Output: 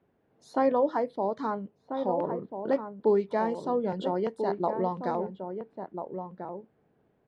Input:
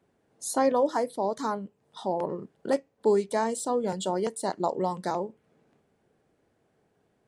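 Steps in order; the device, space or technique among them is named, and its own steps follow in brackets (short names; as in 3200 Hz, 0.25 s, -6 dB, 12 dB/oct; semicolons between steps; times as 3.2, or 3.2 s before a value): shout across a valley (air absorption 300 m; outdoor echo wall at 230 m, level -7 dB)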